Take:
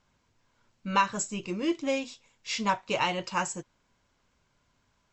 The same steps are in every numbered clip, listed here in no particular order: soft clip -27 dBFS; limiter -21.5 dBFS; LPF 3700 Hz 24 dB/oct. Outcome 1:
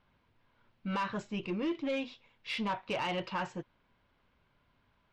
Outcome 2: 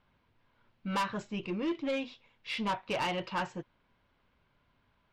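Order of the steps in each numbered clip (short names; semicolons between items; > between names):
limiter > LPF > soft clip; LPF > soft clip > limiter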